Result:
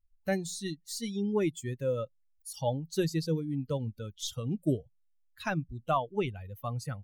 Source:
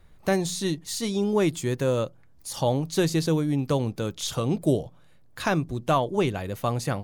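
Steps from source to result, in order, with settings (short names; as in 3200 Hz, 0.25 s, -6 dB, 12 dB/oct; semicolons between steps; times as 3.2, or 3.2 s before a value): per-bin expansion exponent 2; gain -3 dB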